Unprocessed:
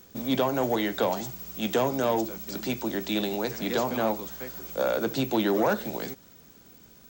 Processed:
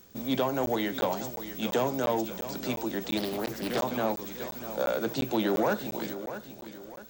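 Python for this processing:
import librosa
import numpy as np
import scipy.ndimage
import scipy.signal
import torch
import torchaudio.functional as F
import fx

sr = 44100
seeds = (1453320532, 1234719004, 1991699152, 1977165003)

y = fx.echo_feedback(x, sr, ms=644, feedback_pct=40, wet_db=-11.5)
y = fx.buffer_crackle(y, sr, first_s=0.66, period_s=0.35, block=512, kind='zero')
y = fx.doppler_dist(y, sr, depth_ms=0.49, at=(3.17, 3.8))
y = y * librosa.db_to_amplitude(-2.5)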